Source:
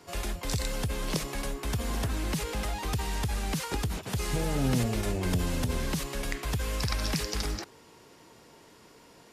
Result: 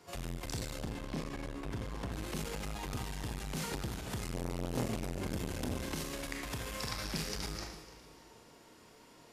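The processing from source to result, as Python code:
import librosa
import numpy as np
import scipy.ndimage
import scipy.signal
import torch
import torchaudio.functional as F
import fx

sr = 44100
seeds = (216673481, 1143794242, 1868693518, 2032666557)

y = fx.lowpass(x, sr, hz=2400.0, slope=6, at=(0.76, 2.12))
y = fx.low_shelf(y, sr, hz=190.0, db=-6.5, at=(5.75, 7.03), fade=0.02)
y = fx.echo_feedback(y, sr, ms=296, feedback_pct=41, wet_db=-17)
y = fx.rev_schroeder(y, sr, rt60_s=0.69, comb_ms=25, drr_db=1.0)
y = fx.transformer_sat(y, sr, knee_hz=620.0)
y = y * librosa.db_to_amplitude(-6.0)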